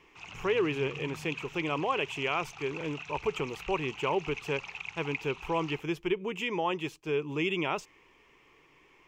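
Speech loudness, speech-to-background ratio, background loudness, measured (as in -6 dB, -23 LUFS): -32.5 LUFS, 10.0 dB, -42.5 LUFS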